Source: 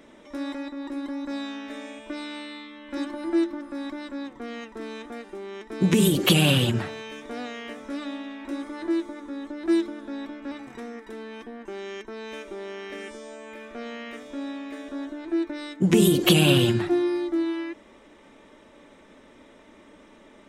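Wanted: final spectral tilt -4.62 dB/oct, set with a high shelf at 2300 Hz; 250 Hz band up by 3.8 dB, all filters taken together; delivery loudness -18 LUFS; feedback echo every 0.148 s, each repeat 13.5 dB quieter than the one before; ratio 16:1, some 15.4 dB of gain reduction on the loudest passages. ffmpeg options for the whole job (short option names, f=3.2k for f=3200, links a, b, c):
-af "equalizer=f=250:t=o:g=5.5,highshelf=f=2.3k:g=8,acompressor=threshold=-25dB:ratio=16,aecho=1:1:148|296:0.211|0.0444,volume=13dB"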